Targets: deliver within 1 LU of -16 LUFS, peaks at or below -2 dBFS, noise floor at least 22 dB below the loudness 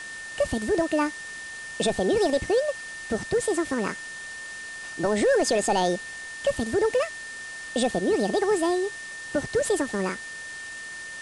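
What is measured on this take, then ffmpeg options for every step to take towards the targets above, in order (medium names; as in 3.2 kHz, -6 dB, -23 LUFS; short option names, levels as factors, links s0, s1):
steady tone 1.8 kHz; tone level -36 dBFS; noise floor -38 dBFS; noise floor target -49 dBFS; loudness -26.5 LUFS; peak level -13.0 dBFS; loudness target -16.0 LUFS
-> -af "bandreject=f=1800:w=30"
-af "afftdn=nr=11:nf=-38"
-af "volume=3.35"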